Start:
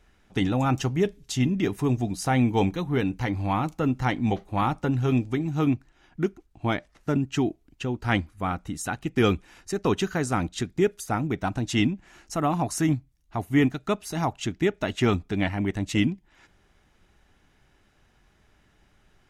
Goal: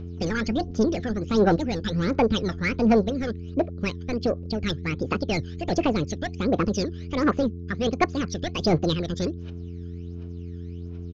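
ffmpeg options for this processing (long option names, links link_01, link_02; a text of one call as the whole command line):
ffmpeg -i in.wav -af "acontrast=72,aresample=8000,asoftclip=type=tanh:threshold=-14.5dB,aresample=44100,aphaser=in_gain=1:out_gain=1:delay=1.1:decay=0.73:speed=0.79:type=triangular,aeval=exprs='val(0)+0.0501*(sin(2*PI*50*n/s)+sin(2*PI*2*50*n/s)/2+sin(2*PI*3*50*n/s)/3+sin(2*PI*4*50*n/s)/4+sin(2*PI*5*50*n/s)/5)':channel_layout=same,asetrate=76440,aresample=44100,volume=-8dB" out.wav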